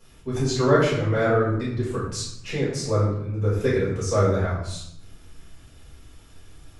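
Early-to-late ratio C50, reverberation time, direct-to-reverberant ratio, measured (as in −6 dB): 2.0 dB, 0.75 s, −10.0 dB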